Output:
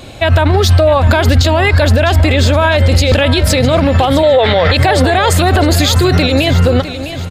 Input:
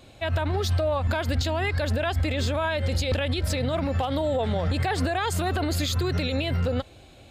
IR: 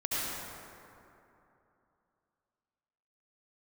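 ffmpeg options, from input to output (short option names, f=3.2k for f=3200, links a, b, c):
-filter_complex "[0:a]asettb=1/sr,asplit=3[a][b][c];[a]atrim=end=4.234[d];[b]atrim=start=4.23:end=4.77,asetpts=PTS-STARTPTS,afade=t=in:d=0.004:c=qsin,afade=t=out:st=0.536:d=0.004:c=qsin,equalizer=f=250:t=o:w=1:g=-6,equalizer=f=500:t=o:w=1:g=9,equalizer=f=1k:t=o:w=1:g=4,equalizer=f=2k:t=o:w=1:g=12,equalizer=f=4k:t=o:w=1:g=11,equalizer=f=8k:t=o:w=1:g=-6[e];[c]atrim=start=4.766[f];[d][e]acrossfade=d=0.004:c1=hsin:c2=qsin[g];[g][f]acrossfade=d=0.004:c1=qsin:c2=hsin,asplit=2[h][i];[i]aecho=0:1:656|1312|1968:0.211|0.0697|0.023[j];[h][j]amix=inputs=2:normalize=0,alimiter=level_in=19dB:limit=-1dB:release=50:level=0:latency=1,volume=-1dB"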